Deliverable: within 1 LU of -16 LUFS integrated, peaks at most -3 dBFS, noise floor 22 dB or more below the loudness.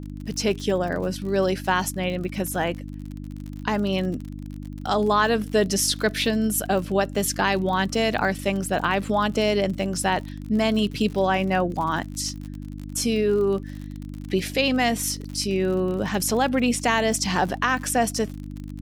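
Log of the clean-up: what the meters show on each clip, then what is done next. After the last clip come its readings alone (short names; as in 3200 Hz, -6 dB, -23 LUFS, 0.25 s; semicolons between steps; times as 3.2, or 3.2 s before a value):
ticks 53/s; hum 50 Hz; harmonics up to 300 Hz; hum level -33 dBFS; loudness -23.5 LUFS; peak -7.5 dBFS; loudness target -16.0 LUFS
-> de-click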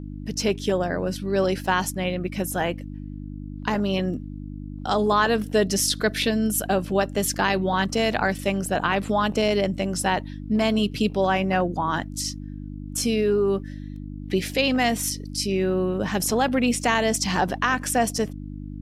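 ticks 0.32/s; hum 50 Hz; harmonics up to 300 Hz; hum level -33 dBFS
-> de-hum 50 Hz, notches 6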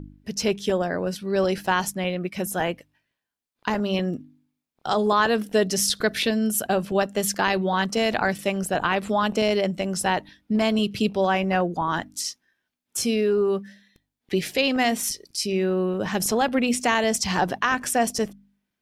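hum none; loudness -24.0 LUFS; peak -8.0 dBFS; loudness target -16.0 LUFS
-> gain +8 dB; limiter -3 dBFS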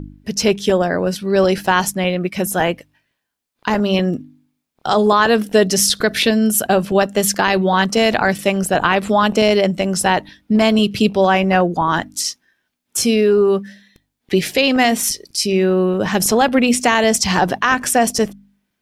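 loudness -16.0 LUFS; peak -3.0 dBFS; noise floor -75 dBFS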